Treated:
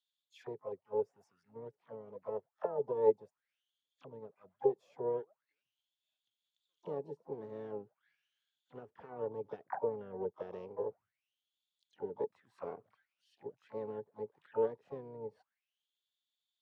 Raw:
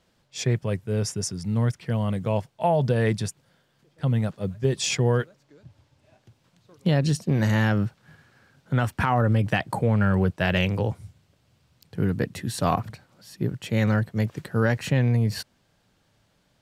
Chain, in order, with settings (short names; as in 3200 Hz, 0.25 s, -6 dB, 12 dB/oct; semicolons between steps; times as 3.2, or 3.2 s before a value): auto-wah 430–3600 Hz, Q 11, down, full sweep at -21 dBFS; harmoniser +4 st -13 dB, +12 st -13 dB; upward expander 1.5:1, over -49 dBFS; gain +3 dB